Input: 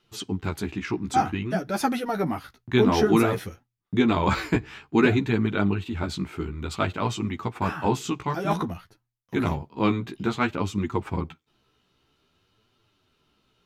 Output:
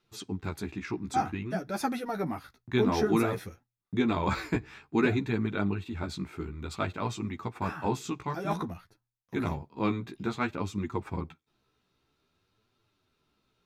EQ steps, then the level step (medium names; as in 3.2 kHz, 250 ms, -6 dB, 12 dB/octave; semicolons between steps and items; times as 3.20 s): band-stop 3 kHz, Q 8.3; -6.0 dB